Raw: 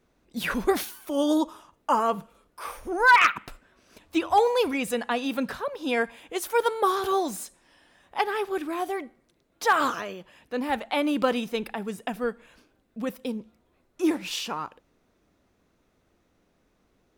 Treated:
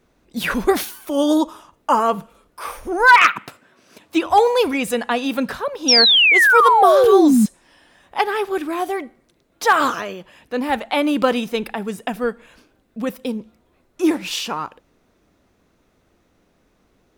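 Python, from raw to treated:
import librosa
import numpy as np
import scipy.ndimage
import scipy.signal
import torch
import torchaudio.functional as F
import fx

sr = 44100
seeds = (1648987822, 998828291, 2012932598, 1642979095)

y = fx.highpass(x, sr, hz=110.0, slope=24, at=(3.09, 4.26))
y = fx.spec_paint(y, sr, seeds[0], shape='fall', start_s=5.88, length_s=1.58, low_hz=200.0, high_hz=5800.0, level_db=-19.0)
y = F.gain(torch.from_numpy(y), 6.5).numpy()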